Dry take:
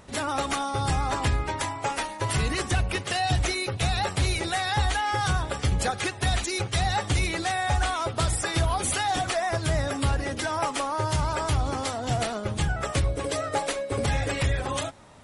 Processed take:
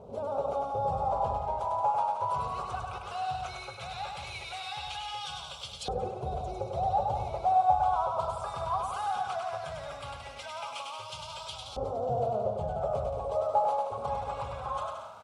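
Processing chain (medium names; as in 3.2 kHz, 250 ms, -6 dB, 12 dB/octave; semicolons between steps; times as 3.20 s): jump at every zero crossing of -37 dBFS; bass shelf 430 Hz +11 dB; static phaser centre 760 Hz, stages 4; bouncing-ball echo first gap 100 ms, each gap 0.75×, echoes 5; LFO band-pass saw up 0.17 Hz 420–3600 Hz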